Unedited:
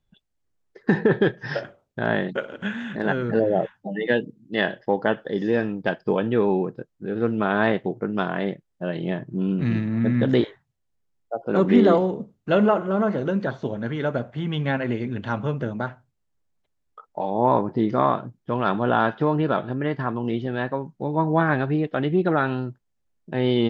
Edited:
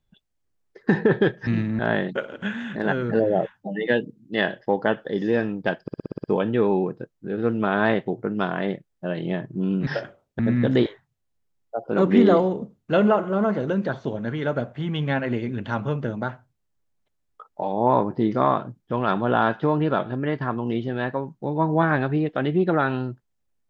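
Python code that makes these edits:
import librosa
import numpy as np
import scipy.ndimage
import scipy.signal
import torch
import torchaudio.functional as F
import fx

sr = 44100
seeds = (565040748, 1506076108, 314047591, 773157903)

y = fx.edit(x, sr, fx.swap(start_s=1.47, length_s=0.52, other_s=9.65, other_length_s=0.32),
    fx.stutter(start_s=6.02, slice_s=0.06, count=8), tone=tone)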